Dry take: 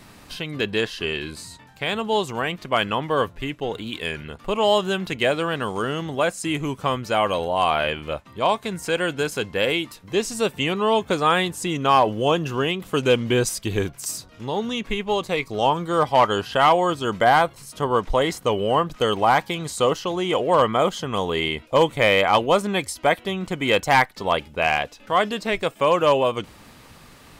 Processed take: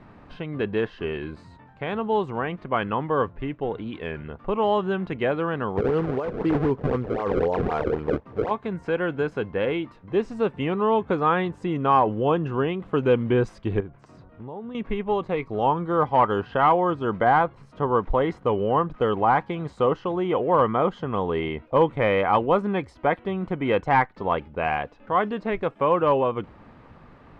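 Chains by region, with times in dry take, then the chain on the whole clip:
5.77–8.51 s: decimation with a swept rate 28×, swing 160% 3.9 Hz + peaking EQ 450 Hz +10 dB 0.4 oct + compressor with a negative ratio -22 dBFS
13.80–14.75 s: low-pass 1.8 kHz 6 dB/octave + compression 3:1, threshold -35 dBFS
whole clip: low-pass 1.4 kHz 12 dB/octave; dynamic bell 630 Hz, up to -6 dB, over -34 dBFS, Q 4.3

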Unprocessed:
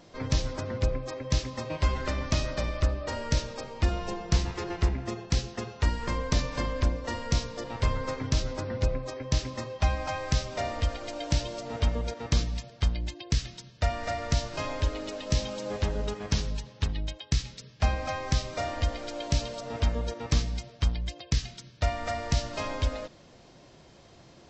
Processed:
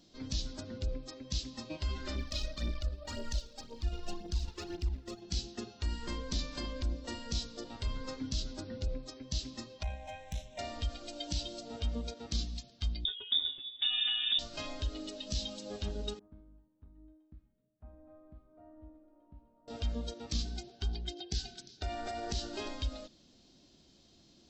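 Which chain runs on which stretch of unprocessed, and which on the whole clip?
2.15–5.22 s: transient shaper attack -12 dB, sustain -8 dB + phaser 1.9 Hz, delay 2.4 ms, feedback 56%
9.83–10.59 s: peaking EQ 530 Hz +5.5 dB 0.4 oct + valve stage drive 17 dB, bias 0.5 + static phaser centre 1.3 kHz, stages 6
13.05–14.39 s: comb 7.5 ms, depth 80% + frequency inversion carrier 3.6 kHz
16.19–19.68 s: low-pass 1.3 kHz 24 dB/octave + feedback comb 310 Hz, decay 0.84 s, mix 90%
20.45–22.69 s: small resonant body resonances 390/760/1500 Hz, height 17 dB, ringing for 70 ms + repeats whose band climbs or falls 117 ms, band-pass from 700 Hz, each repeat 1.4 oct, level -10.5 dB
whole clip: spectral noise reduction 7 dB; peak limiter -23.5 dBFS; ten-band graphic EQ 125 Hz -9 dB, 250 Hz +6 dB, 500 Hz -8 dB, 1 kHz -9 dB, 2 kHz -9 dB, 4 kHz +7 dB

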